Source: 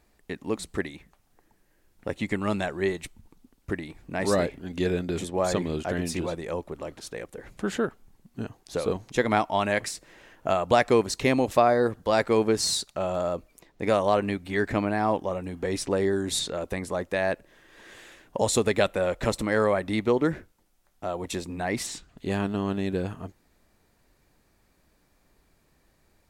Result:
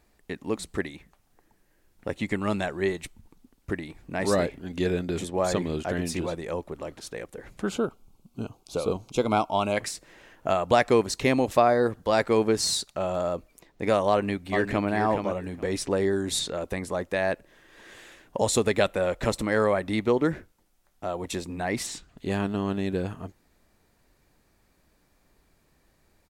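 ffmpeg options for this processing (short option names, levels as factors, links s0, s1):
-filter_complex "[0:a]asettb=1/sr,asplit=3[s0][s1][s2];[s0]atrim=end=7.694[s3];[s1]atrim=start=7.69:end=9.77,asetpts=PTS-STARTPTS,afade=t=in:d=0.004:c=qsin,afade=t=out:st=2.076:d=0.004:c=qsin,asuperstop=centerf=1800:order=4:qfactor=2.1[s4];[s2]atrim=start=9.766[s5];[s3][s4]acrossfade=d=0.004:c1=hsin:c2=qsin[s6];[s6][s5]acrossfade=d=0.004:c1=qsin:c2=hsin,asplit=2[s7][s8];[s8]afade=t=in:st=14.1:d=0.01,afade=t=out:st=14.9:d=0.01,aecho=0:1:420|840|1260:0.473151|0.0709727|0.0106459[s9];[s7][s9]amix=inputs=2:normalize=0"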